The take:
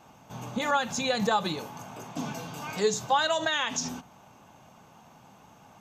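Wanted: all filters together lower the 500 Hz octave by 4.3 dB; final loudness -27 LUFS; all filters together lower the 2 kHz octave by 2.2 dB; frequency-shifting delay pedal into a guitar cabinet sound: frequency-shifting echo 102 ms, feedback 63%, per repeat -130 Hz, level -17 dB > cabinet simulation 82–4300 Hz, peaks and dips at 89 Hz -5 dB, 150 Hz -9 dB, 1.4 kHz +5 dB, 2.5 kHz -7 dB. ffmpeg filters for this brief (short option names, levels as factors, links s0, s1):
-filter_complex "[0:a]equalizer=f=500:t=o:g=-5,equalizer=f=2000:t=o:g=-5,asplit=7[s0][s1][s2][s3][s4][s5][s6];[s1]adelay=102,afreqshift=-130,volume=0.141[s7];[s2]adelay=204,afreqshift=-260,volume=0.0891[s8];[s3]adelay=306,afreqshift=-390,volume=0.0562[s9];[s4]adelay=408,afreqshift=-520,volume=0.0355[s10];[s5]adelay=510,afreqshift=-650,volume=0.0221[s11];[s6]adelay=612,afreqshift=-780,volume=0.014[s12];[s0][s7][s8][s9][s10][s11][s12]amix=inputs=7:normalize=0,highpass=82,equalizer=f=89:t=q:w=4:g=-5,equalizer=f=150:t=q:w=4:g=-9,equalizer=f=1400:t=q:w=4:g=5,equalizer=f=2500:t=q:w=4:g=-7,lowpass=f=4300:w=0.5412,lowpass=f=4300:w=1.3066,volume=1.68"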